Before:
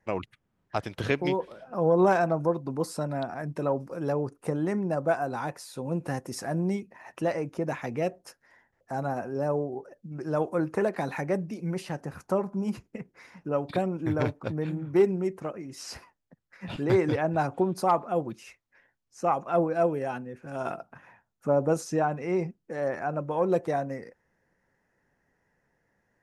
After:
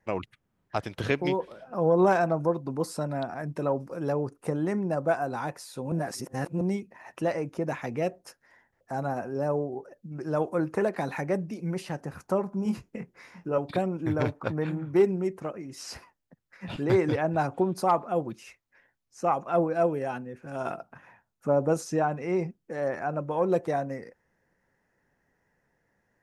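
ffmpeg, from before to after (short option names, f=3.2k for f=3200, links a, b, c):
-filter_complex "[0:a]asettb=1/sr,asplit=3[a][b][c];[a]atrim=end=12.634[d];[b]atrim=start=12.63:end=13.58,asetpts=PTS-STARTPTS,afade=t=in:d=0.004:c=qsin,afade=t=out:st=0.946:d=0.004:c=qsin,asplit=2[e][f];[f]adelay=23,volume=-5dB[g];[e][g]amix=inputs=2:normalize=0,atrim=end_sample=41895[h];[c]atrim=start=13.576[i];[d][h]acrossfade=d=0.004:c1=hsin:c2=qsin[j];[j][i]acrossfade=d=0.004:c1=qsin:c2=hsin,asettb=1/sr,asplit=3[k][l][m];[k]atrim=end=14.324[n];[l]atrim=start=14.32:end=14.85,asetpts=PTS-STARTPTS,afade=t=in:d=0.004:c=qsin,afade=t=out:st=0.526:d=0.004:c=qsin,equalizer=f=1.2k:w=0.72:g=7[o];[m]atrim=start=14.846[p];[n][o]acrossfade=d=0.004:c1=hsin:c2=qsin[q];[q][p]acrossfade=d=0.004:c1=qsin:c2=hsin,asplit=3[r][s][t];[r]atrim=end=5.922[u];[s]atrim=start=5.918:end=6.612,asetpts=PTS-STARTPTS,areverse[v];[t]atrim=start=6.608[w];[u][v]acrossfade=d=0.004:c1=hsin:c2=hsin[x];[x][w]acrossfade=d=0.004:c1=hsin:c2=hsin"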